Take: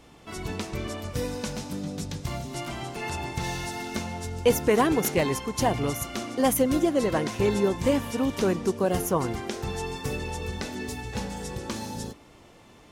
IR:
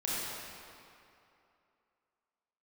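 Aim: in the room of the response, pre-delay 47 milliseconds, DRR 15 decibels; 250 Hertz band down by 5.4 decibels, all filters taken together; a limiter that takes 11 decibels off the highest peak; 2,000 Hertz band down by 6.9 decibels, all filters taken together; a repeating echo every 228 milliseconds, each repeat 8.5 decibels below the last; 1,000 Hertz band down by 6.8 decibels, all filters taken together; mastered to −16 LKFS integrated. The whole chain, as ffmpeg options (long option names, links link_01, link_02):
-filter_complex "[0:a]equalizer=frequency=250:width_type=o:gain=-6.5,equalizer=frequency=1000:width_type=o:gain=-7.5,equalizer=frequency=2000:width_type=o:gain=-6.5,alimiter=limit=-23.5dB:level=0:latency=1,aecho=1:1:228|456|684|912:0.376|0.143|0.0543|0.0206,asplit=2[link_01][link_02];[1:a]atrim=start_sample=2205,adelay=47[link_03];[link_02][link_03]afir=irnorm=-1:irlink=0,volume=-21.5dB[link_04];[link_01][link_04]amix=inputs=2:normalize=0,volume=18dB"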